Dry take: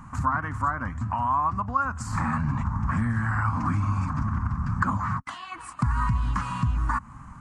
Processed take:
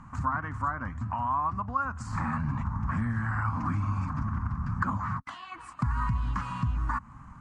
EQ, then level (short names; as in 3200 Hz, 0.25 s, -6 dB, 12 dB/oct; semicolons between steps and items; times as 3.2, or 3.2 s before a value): air absorption 57 m; -4.0 dB